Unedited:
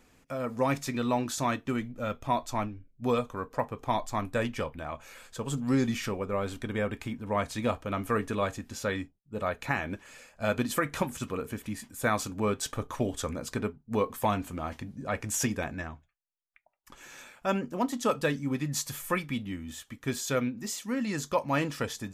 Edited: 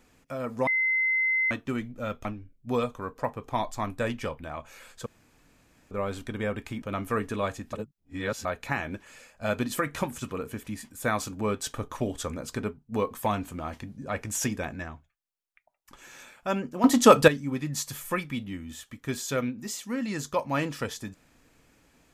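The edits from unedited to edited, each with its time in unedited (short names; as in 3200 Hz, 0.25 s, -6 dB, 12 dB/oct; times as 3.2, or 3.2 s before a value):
0.67–1.51 bleep 2060 Hz -22 dBFS
2.25–2.6 cut
5.41–6.26 room tone
7.17–7.81 cut
8.72–9.44 reverse
17.83–18.27 gain +12 dB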